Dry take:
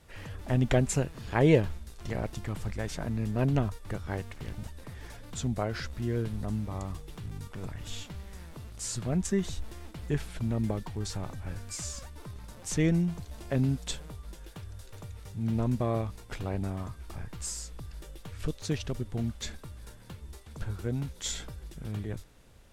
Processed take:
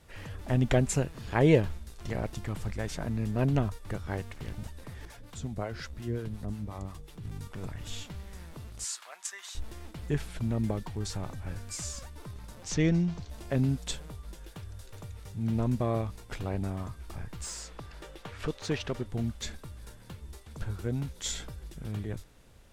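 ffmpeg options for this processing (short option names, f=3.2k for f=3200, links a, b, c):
-filter_complex "[0:a]asettb=1/sr,asplit=3[a][b][c];[a]atrim=end=5.054[d];[b]atrim=start=5.05:end=7.25,asetpts=PTS-STARTPTS,afade=t=in:d=0.004:c=qsin,afade=t=out:st=2.196:d=0.004:c=qsin,acrossover=split=500[e][f];[e]aeval=exprs='val(0)*(1-0.7/2+0.7/2*cos(2*PI*5.6*n/s))':c=same[g];[f]aeval=exprs='val(0)*(1-0.7/2-0.7/2*cos(2*PI*5.6*n/s))':c=same[h];[g][h]amix=inputs=2:normalize=0[i];[c]atrim=start=7.246[j];[d][i]acrossfade=d=0.004:c1=hsin:c2=qsin[k];[k][j]acrossfade=d=0.004:c1=qsin:c2=hsin,asettb=1/sr,asplit=3[l][m][n];[l]atrim=end=8.844[o];[m]atrim=start=8.84:end=9.55,asetpts=PTS-STARTPTS,afade=t=in:d=0.004:c=qsin,afade=t=out:st=0.706:d=0.004:c=qsin,highpass=f=920:w=0.5412,highpass=f=920:w=1.3066[p];[n]atrim=start=9.546[q];[o][p]acrossfade=d=0.004:c1=hsin:c2=qsin[r];[r][q]acrossfade=d=0.004:c1=qsin:c2=hsin,asettb=1/sr,asplit=3[s][t][u];[s]atrim=end=12.644[v];[t]atrim=start=12.64:end=13.3,asetpts=PTS-STARTPTS,afade=t=in:d=0.004:c=qsin,afade=t=out:st=0.656:d=0.004:c=qsin,highshelf=f=7.7k:t=q:w=1.5:g=-12[w];[u]atrim=start=13.296[x];[v][w]acrossfade=d=0.004:c1=hsin:c2=qsin[y];[y][x]acrossfade=d=0.004:c1=qsin:c2=hsin,asettb=1/sr,asplit=3[z][aa][ab];[z]atrim=end=17.444[ac];[aa]atrim=start=17.44:end=19.06,asetpts=PTS-STARTPTS,afade=t=in:d=0.004:c=qsin,afade=t=out:st=1.616:d=0.004:c=qsin,asplit=2[ad][ae];[ae]highpass=f=720:p=1,volume=15dB,asoftclip=type=tanh:threshold=-18dB[af];[ad][af]amix=inputs=2:normalize=0,lowpass=f=1.8k:p=1,volume=-6dB[ag];[ab]atrim=start=19.056[ah];[ac][ag]acrossfade=d=0.004:c1=hsin:c2=qsin[ai];[ai][ah]acrossfade=d=0.004:c1=qsin:c2=hsin"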